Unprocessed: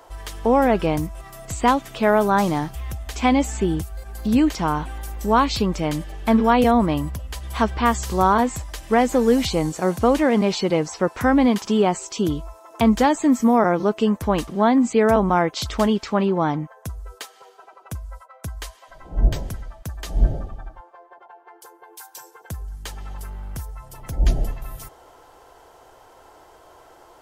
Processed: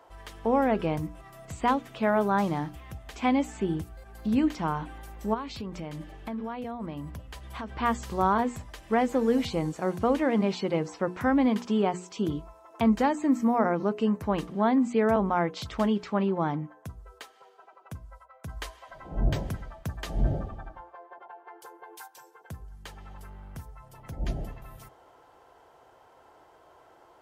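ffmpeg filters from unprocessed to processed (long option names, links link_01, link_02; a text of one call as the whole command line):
ffmpeg -i in.wav -filter_complex "[0:a]asplit=3[link_01][link_02][link_03];[link_01]afade=type=out:start_time=5.33:duration=0.02[link_04];[link_02]acompressor=threshold=-25dB:ratio=6:attack=3.2:release=140:knee=1:detection=peak,afade=type=in:start_time=5.33:duration=0.02,afade=type=out:start_time=7.69:duration=0.02[link_05];[link_03]afade=type=in:start_time=7.69:duration=0.02[link_06];[link_04][link_05][link_06]amix=inputs=3:normalize=0,asettb=1/sr,asplit=3[link_07][link_08][link_09];[link_07]atrim=end=12.844[link_10];[link_08]atrim=start=12.84:end=14.28,asetpts=PTS-STARTPTS,afade=type=in:duration=0.004:curve=qsin,afade=type=out:start_time=1.436:duration=0.004:curve=qsin,bandreject=frequency=3400:width=9[link_11];[link_09]atrim=start=14.276[link_12];[link_10][link_11]acrossfade=duration=0.004:curve1=hsin:curve2=qsin[link_13];[link_13][link_12]acrossfade=duration=0.004:curve1=qsin:curve2=hsin,asettb=1/sr,asplit=3[link_14][link_15][link_16];[link_14]atrim=end=18.494[link_17];[link_15]atrim=start=18.49:end=22.08,asetpts=PTS-STARTPTS,afade=type=in:duration=0.004:curve=qsin,afade=type=out:start_time=3.586:duration=0.004:curve=qsin,acontrast=68[link_18];[link_16]atrim=start=22.076[link_19];[link_17][link_18]acrossfade=duration=0.004:curve1=hsin:curve2=qsin[link_20];[link_20][link_19]acrossfade=duration=0.004:curve1=qsin:curve2=hsin,highpass=frequency=180:poles=1,bass=frequency=250:gain=6,treble=frequency=4000:gain=-8,bandreject=frequency=60:width_type=h:width=6,bandreject=frequency=120:width_type=h:width=6,bandreject=frequency=180:width_type=h:width=6,bandreject=frequency=240:width_type=h:width=6,bandreject=frequency=300:width_type=h:width=6,bandreject=frequency=360:width_type=h:width=6,bandreject=frequency=420:width_type=h:width=6,bandreject=frequency=480:width_type=h:width=6,volume=-7dB" out.wav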